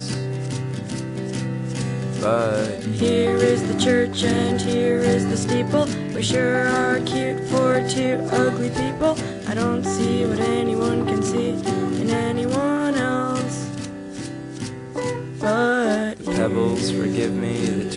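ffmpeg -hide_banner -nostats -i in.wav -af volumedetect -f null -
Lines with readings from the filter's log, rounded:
mean_volume: -21.3 dB
max_volume: -5.5 dB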